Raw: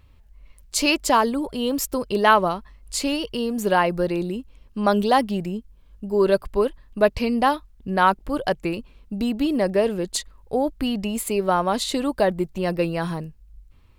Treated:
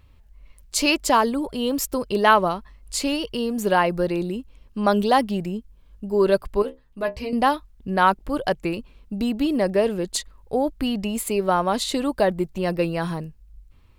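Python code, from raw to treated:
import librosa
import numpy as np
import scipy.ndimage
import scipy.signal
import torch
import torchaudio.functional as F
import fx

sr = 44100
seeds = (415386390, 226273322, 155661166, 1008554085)

y = fx.stiff_resonator(x, sr, f0_hz=63.0, decay_s=0.23, stiffness=0.002, at=(6.62, 7.33))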